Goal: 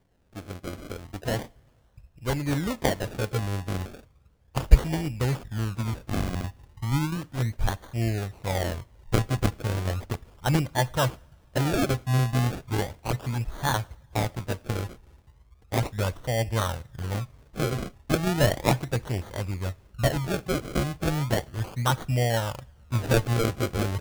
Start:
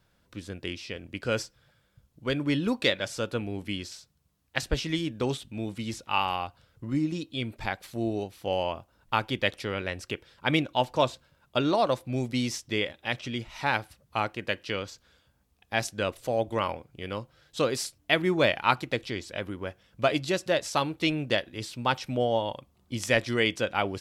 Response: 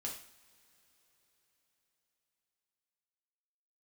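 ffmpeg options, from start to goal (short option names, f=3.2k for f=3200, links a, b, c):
-filter_complex "[0:a]asubboost=boost=9.5:cutoff=95,acrusher=samples=33:mix=1:aa=0.000001:lfo=1:lforange=33:lforate=0.35,asplit=2[a][b];[1:a]atrim=start_sample=2205[c];[b][c]afir=irnorm=-1:irlink=0,volume=-17dB[d];[a][d]amix=inputs=2:normalize=0"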